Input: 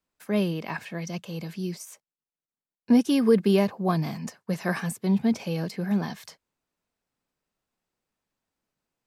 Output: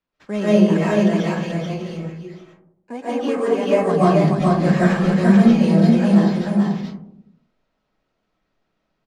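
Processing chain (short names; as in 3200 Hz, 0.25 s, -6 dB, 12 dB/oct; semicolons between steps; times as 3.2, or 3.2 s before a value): 1.42–3.7 three-band isolator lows -20 dB, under 470 Hz, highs -16 dB, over 2600 Hz; sample-rate reducer 9200 Hz, jitter 0%; air absorption 100 m; echo 0.433 s -3 dB; digital reverb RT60 0.74 s, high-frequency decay 0.25×, pre-delay 0.1 s, DRR -9.5 dB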